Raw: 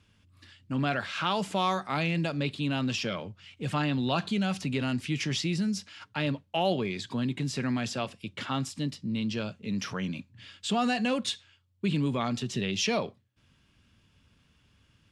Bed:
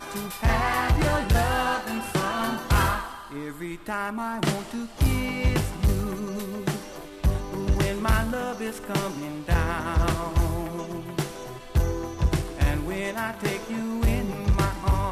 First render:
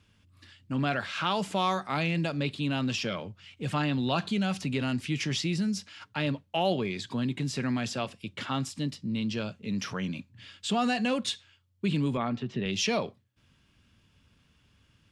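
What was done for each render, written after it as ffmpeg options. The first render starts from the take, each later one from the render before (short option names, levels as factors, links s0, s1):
-filter_complex "[0:a]asettb=1/sr,asplit=3[s0][s1][s2];[s0]atrim=end=12.174[s3];[s1]atrim=start=12.17:end=12.66,asetpts=PTS-STARTPTS,afade=t=in:d=0.004:c=qsin,afade=t=out:st=0.486:d=0.004:c=qsin,highpass=100,lowpass=2200[s4];[s2]atrim=start=12.656[s5];[s3][s4]acrossfade=d=0.004:c1=hsin:c2=qsin[s6];[s6][s5]acrossfade=d=0.004:c1=qsin:c2=hsin"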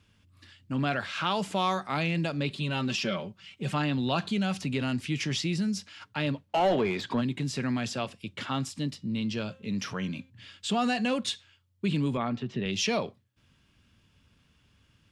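-filter_complex "[0:a]asettb=1/sr,asplit=3[s0][s1][s2];[s0]atrim=end=2.504[s3];[s1]atrim=start=2.5:end=3.72,asetpts=PTS-STARTPTS,afade=t=in:d=0.004:c=qsin,afade=t=out:st=1.216:d=0.004:c=qsin,aecho=1:1:5.2:0.65,atrim=end_sample=53802[s4];[s2]atrim=start=3.716[s5];[s3][s4]acrossfade=d=0.004:c1=hsin:c2=qsin[s6];[s6][s5]acrossfade=d=0.004:c1=qsin:c2=hsin,asplit=3[s7][s8][s9];[s7]afade=t=out:st=6.48:d=0.02[s10];[s8]asplit=2[s11][s12];[s12]highpass=f=720:p=1,volume=10,asoftclip=type=tanh:threshold=0.178[s13];[s11][s13]amix=inputs=2:normalize=0,lowpass=f=1100:p=1,volume=0.501,afade=t=in:st=6.48:d=0.02,afade=t=out:st=7.2:d=0.02[s14];[s9]afade=t=in:st=7.2:d=0.02[s15];[s10][s14][s15]amix=inputs=3:normalize=0,asettb=1/sr,asplit=3[s16][s17][s18];[s16]atrim=end=8.954[s19];[s17]atrim=start=8.95:end=10.3,asetpts=PTS-STARTPTS,afade=t=in:d=0.004:c=qsin,afade=t=out:st=1.346:d=0.004:c=qsin,bandreject=f=264:t=h:w=4,bandreject=f=528:t=h:w=4,bandreject=f=792:t=h:w=4,bandreject=f=1056:t=h:w=4,bandreject=f=1320:t=h:w=4,bandreject=f=1584:t=h:w=4,bandreject=f=1848:t=h:w=4,bandreject=f=2112:t=h:w=4,bandreject=f=2376:t=h:w=4,bandreject=f=2640:t=h:w=4,bandreject=f=2904:t=h:w=4,bandreject=f=3168:t=h:w=4,bandreject=f=3432:t=h:w=4,bandreject=f=3696:t=h:w=4,bandreject=f=3960:t=h:w=4[s20];[s18]atrim=start=10.296[s21];[s19][s20]acrossfade=d=0.004:c1=hsin:c2=qsin[s22];[s22][s21]acrossfade=d=0.004:c1=qsin:c2=hsin"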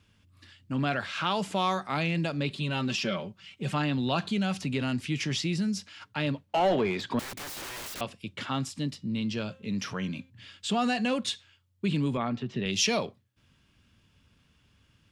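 -filter_complex "[0:a]asettb=1/sr,asplit=3[s0][s1][s2];[s0]atrim=end=7.194[s3];[s1]atrim=start=7.19:end=8.01,asetpts=PTS-STARTPTS,afade=t=in:d=0.004:c=qsin,afade=t=out:st=0.816:d=0.004:c=qsin,aeval=exprs='(mod(53.1*val(0)+1,2)-1)/53.1':c=same[s4];[s2]atrim=start=8.006[s5];[s3][s4]acrossfade=d=0.004:c1=hsin:c2=qsin[s6];[s6][s5]acrossfade=d=0.004:c1=qsin:c2=hsin,asettb=1/sr,asplit=3[s7][s8][s9];[s7]atrim=end=12.564[s10];[s8]atrim=start=12.56:end=13.06,asetpts=PTS-STARTPTS,afade=t=in:d=0.004:c=qsin,afade=t=out:st=0.496:d=0.004:c=qsin,highshelf=f=4900:g=8.5[s11];[s9]atrim=start=13.056[s12];[s10][s11]acrossfade=d=0.004:c1=hsin:c2=qsin[s13];[s13][s12]acrossfade=d=0.004:c1=qsin:c2=hsin"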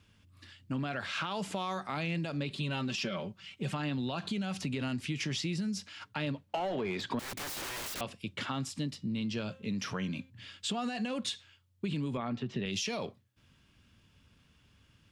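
-af "alimiter=limit=0.0841:level=0:latency=1:release=65,acompressor=threshold=0.0282:ratio=6"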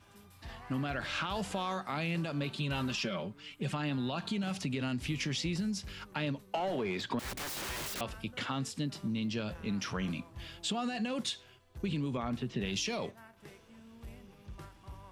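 -filter_complex "[1:a]volume=0.0501[s0];[0:a][s0]amix=inputs=2:normalize=0"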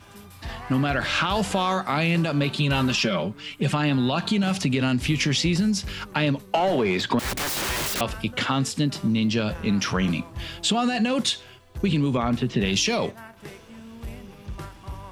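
-af "volume=3.98"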